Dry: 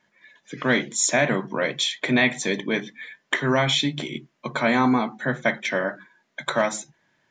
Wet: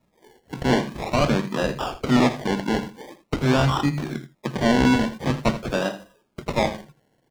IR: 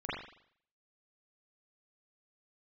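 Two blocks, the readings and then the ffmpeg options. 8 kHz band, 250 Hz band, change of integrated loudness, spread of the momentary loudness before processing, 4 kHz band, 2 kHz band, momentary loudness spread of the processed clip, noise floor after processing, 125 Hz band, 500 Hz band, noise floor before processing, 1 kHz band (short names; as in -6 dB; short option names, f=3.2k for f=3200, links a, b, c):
-10.5 dB, +3.5 dB, 0.0 dB, 13 LU, -4.5 dB, -5.5 dB, 13 LU, -68 dBFS, +6.5 dB, +0.5 dB, -70 dBFS, +1.5 dB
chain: -filter_complex "[0:a]bass=f=250:g=6,treble=f=4k:g=-8,acrusher=samples=28:mix=1:aa=0.000001:lfo=1:lforange=16.8:lforate=0.46,acrossover=split=6400[a][b];[b]acompressor=threshold=-49dB:ratio=4:attack=1:release=60[c];[a][c]amix=inputs=2:normalize=0,asplit=2[d][e];[e]aecho=0:1:81:0.211[f];[d][f]amix=inputs=2:normalize=0"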